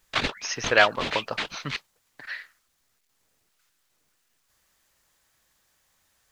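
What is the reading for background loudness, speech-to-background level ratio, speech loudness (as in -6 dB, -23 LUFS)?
-30.5 LUFS, 3.5 dB, -27.0 LUFS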